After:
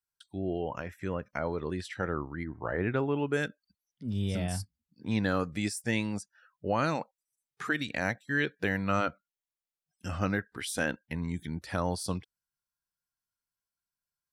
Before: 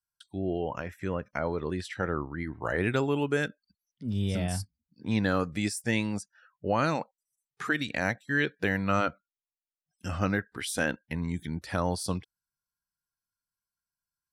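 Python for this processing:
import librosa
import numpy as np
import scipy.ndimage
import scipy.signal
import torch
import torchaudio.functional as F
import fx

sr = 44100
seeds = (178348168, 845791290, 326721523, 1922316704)

y = fx.lowpass(x, sr, hz=fx.line((2.43, 1300.0), (3.32, 2900.0)), slope=12, at=(2.43, 3.32), fade=0.02)
y = F.gain(torch.from_numpy(y), -2.0).numpy()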